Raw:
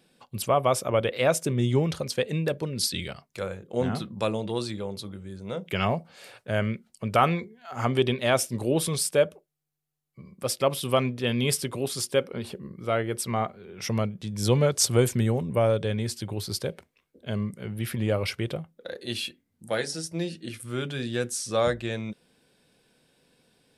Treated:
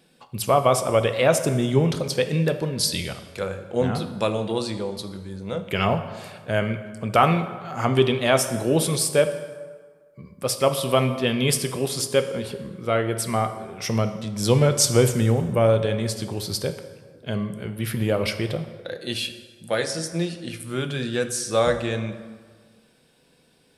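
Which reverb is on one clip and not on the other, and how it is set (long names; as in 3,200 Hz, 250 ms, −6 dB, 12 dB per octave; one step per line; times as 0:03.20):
dense smooth reverb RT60 1.6 s, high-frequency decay 0.65×, DRR 8 dB
level +3.5 dB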